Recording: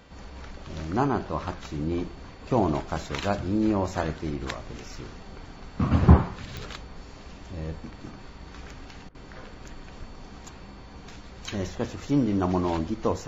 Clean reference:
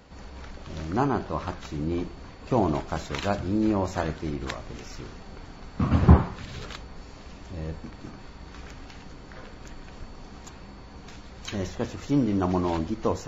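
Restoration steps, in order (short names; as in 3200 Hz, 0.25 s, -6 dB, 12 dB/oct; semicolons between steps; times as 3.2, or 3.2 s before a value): de-click; de-hum 392.5 Hz, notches 9; interpolate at 9.09, 56 ms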